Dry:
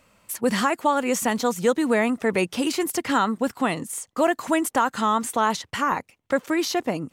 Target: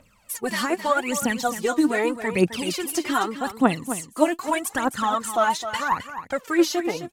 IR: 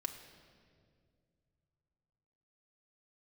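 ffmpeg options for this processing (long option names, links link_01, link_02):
-af "aphaser=in_gain=1:out_gain=1:delay=3.5:decay=0.76:speed=0.82:type=triangular,aecho=1:1:262:0.282,volume=-4dB"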